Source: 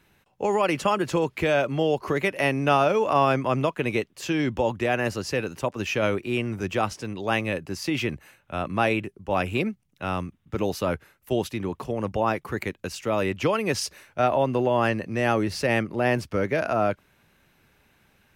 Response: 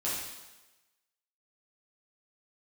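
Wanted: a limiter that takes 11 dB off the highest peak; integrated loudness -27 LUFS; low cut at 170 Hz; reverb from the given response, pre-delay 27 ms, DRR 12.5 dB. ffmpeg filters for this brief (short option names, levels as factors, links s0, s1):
-filter_complex "[0:a]highpass=170,alimiter=limit=0.126:level=0:latency=1,asplit=2[s0][s1];[1:a]atrim=start_sample=2205,adelay=27[s2];[s1][s2]afir=irnorm=-1:irlink=0,volume=0.119[s3];[s0][s3]amix=inputs=2:normalize=0,volume=1.26"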